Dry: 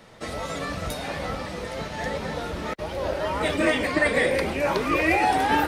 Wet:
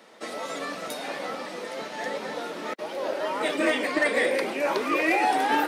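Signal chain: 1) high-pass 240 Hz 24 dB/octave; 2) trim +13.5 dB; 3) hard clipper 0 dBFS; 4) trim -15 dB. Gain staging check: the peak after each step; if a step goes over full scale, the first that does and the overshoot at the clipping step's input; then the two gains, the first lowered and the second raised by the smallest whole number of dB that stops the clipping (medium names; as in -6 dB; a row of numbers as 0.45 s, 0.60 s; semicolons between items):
-9.5 dBFS, +4.0 dBFS, 0.0 dBFS, -15.0 dBFS; step 2, 4.0 dB; step 2 +9.5 dB, step 4 -11 dB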